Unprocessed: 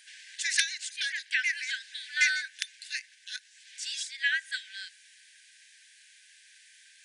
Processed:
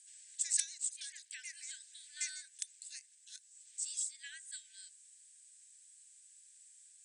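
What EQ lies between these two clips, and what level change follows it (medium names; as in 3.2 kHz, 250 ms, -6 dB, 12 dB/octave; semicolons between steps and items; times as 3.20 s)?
band-pass filter 8 kHz, Q 9.3; +8.5 dB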